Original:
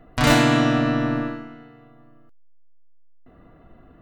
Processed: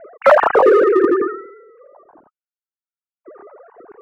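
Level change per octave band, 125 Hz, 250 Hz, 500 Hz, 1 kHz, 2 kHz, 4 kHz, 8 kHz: below −25 dB, −1.5 dB, +14.0 dB, +8.0 dB, +2.0 dB, below −10 dB, can't be measured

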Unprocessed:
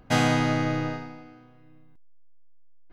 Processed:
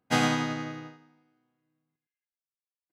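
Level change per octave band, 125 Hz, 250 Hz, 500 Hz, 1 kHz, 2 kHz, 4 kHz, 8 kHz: −8.0, −4.5, −6.5, −3.5, −3.0, −1.5, −1.0 decibels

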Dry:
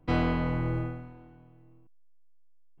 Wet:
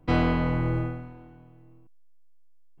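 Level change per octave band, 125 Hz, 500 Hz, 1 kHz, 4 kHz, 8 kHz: +3.5 dB, +3.5 dB, +3.5 dB, can't be measured, can't be measured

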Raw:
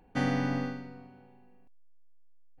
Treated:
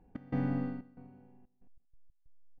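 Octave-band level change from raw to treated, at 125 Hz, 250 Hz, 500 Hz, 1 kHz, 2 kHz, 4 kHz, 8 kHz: −2.5 dB, −3.5 dB, −7.5 dB, −10.0 dB, −14.0 dB, below −20 dB, can't be measured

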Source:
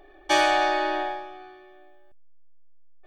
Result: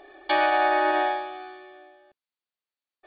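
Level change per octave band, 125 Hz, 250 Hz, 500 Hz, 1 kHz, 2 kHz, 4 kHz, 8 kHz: can't be measured, −0.5 dB, +1.0 dB, +1.5 dB, +0.5 dB, −5.5 dB, below −40 dB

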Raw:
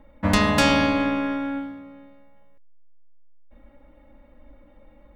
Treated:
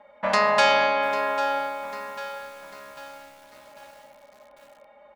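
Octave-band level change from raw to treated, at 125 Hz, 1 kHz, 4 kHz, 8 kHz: below −15 dB, +4.5 dB, −1.0 dB, −4.5 dB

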